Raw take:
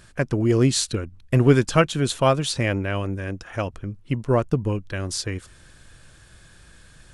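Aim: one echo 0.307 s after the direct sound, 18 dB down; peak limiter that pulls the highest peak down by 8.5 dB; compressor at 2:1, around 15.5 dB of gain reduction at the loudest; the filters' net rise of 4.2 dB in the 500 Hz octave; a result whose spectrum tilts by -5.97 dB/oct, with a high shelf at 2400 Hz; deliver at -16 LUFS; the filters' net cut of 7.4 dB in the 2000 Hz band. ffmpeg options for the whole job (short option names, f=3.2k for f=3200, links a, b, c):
-af "equalizer=f=500:t=o:g=6,equalizer=f=2k:t=o:g=-7.5,highshelf=f=2.4k:g=-6,acompressor=threshold=-37dB:ratio=2,alimiter=level_in=2dB:limit=-24dB:level=0:latency=1,volume=-2dB,aecho=1:1:307:0.126,volume=20.5dB"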